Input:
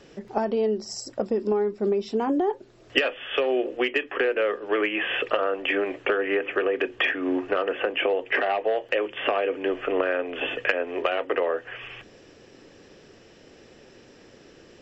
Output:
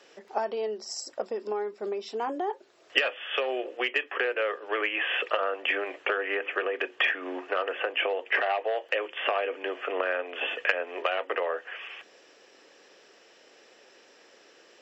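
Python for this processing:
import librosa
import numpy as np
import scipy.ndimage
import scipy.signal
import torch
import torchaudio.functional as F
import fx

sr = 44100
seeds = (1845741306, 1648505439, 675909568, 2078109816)

y = scipy.signal.sosfilt(scipy.signal.butter(2, 580.0, 'highpass', fs=sr, output='sos'), x)
y = F.gain(torch.from_numpy(y), -1.0).numpy()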